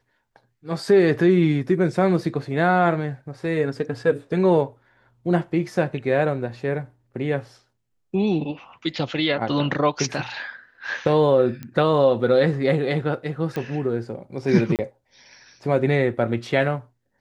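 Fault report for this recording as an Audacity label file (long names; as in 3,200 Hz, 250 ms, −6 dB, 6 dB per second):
11.630000	11.630000	click −20 dBFS
13.560000	13.560000	click −16 dBFS
14.760000	14.790000	drop-out 28 ms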